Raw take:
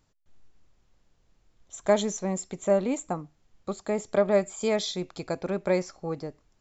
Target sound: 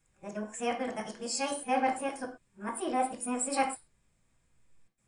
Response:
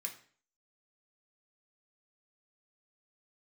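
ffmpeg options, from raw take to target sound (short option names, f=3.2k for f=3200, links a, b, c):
-filter_complex "[0:a]areverse,asetrate=57330,aresample=44100[a];[1:a]atrim=start_sample=2205,afade=t=out:st=0.18:d=0.01,atrim=end_sample=8379[b];[a][b]afir=irnorm=-1:irlink=0"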